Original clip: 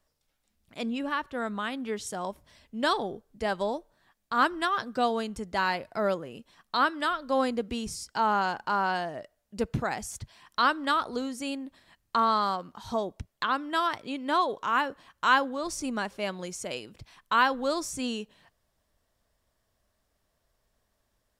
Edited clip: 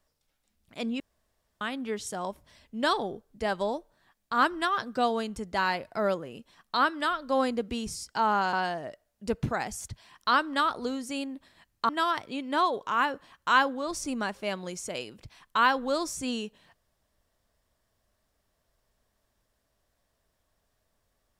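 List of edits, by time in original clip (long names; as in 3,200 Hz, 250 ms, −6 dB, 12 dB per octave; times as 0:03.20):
0:01.00–0:01.61: fill with room tone
0:08.53–0:08.84: remove
0:12.20–0:13.65: remove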